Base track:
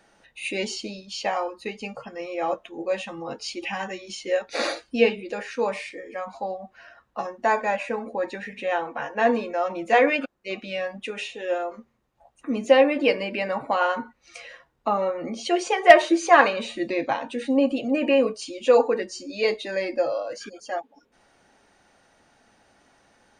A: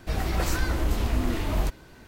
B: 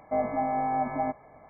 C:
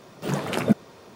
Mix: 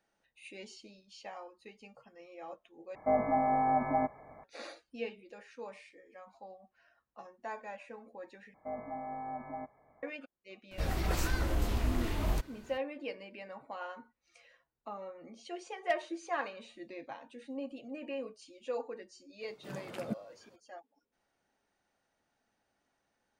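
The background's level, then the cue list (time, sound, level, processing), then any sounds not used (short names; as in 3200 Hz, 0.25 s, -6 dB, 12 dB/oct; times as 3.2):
base track -20 dB
2.95 replace with B -1 dB
8.54 replace with B -13 dB
10.71 add A -6 dB
19.41 add C -18 dB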